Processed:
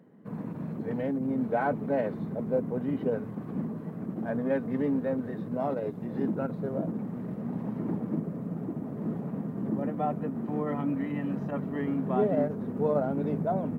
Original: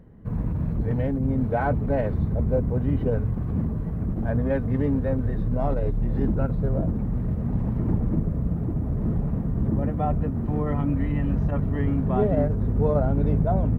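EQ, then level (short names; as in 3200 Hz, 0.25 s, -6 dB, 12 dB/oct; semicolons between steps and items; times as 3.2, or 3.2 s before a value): HPF 180 Hz 24 dB/oct; -2.5 dB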